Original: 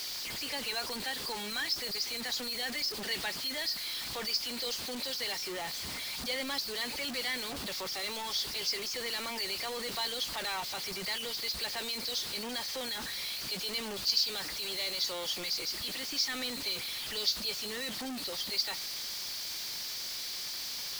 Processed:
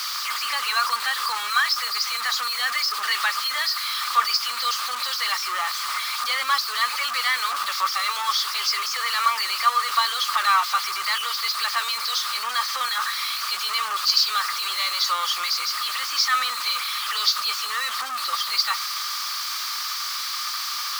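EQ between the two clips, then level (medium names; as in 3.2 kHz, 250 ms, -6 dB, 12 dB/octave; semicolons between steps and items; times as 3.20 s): resonant high-pass 1.2 kHz, resonance Q 12; +8.5 dB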